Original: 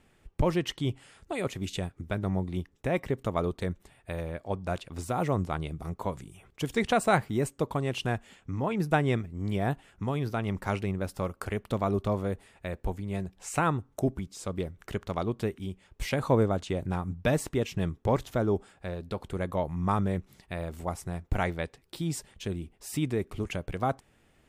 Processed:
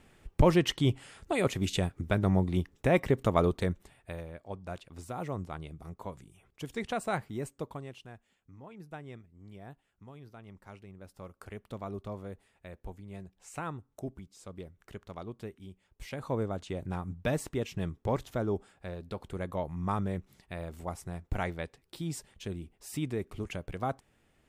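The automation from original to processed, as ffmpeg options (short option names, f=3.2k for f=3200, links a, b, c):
-af "volume=18.5dB,afade=t=out:st=3.44:d=0.83:silence=0.251189,afade=t=out:st=7.6:d=0.43:silence=0.281838,afade=t=in:st=10.9:d=0.66:silence=0.398107,afade=t=in:st=16.06:d=0.91:silence=0.446684"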